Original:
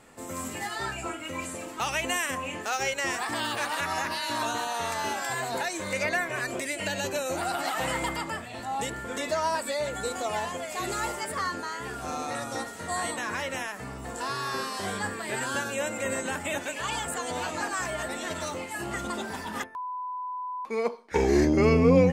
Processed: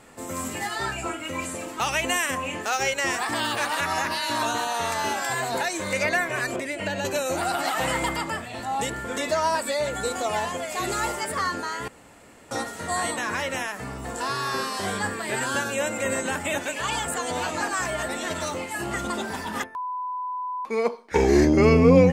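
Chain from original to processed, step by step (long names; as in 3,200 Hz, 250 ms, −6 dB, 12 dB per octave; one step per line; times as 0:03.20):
0:06.56–0:07.05: high-shelf EQ 3,500 Hz −11.5 dB
0:11.88–0:12.51: fill with room tone
level +4 dB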